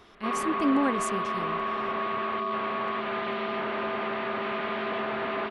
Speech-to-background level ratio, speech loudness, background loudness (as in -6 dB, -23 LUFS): 0.5 dB, -29.5 LUFS, -30.0 LUFS